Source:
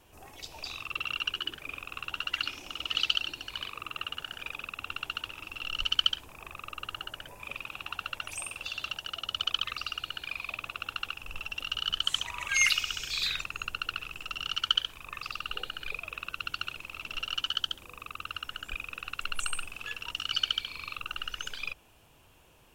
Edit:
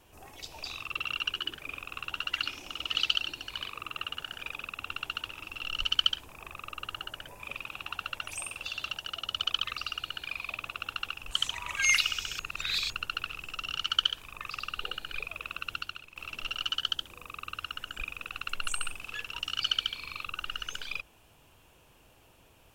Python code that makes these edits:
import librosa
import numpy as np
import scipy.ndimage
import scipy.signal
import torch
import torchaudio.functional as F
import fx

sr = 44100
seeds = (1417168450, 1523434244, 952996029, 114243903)

y = fx.edit(x, sr, fx.cut(start_s=11.31, length_s=0.72),
    fx.reverse_span(start_s=13.11, length_s=0.51),
    fx.fade_out_to(start_s=16.47, length_s=0.41, curve='qua', floor_db=-10.0), tone=tone)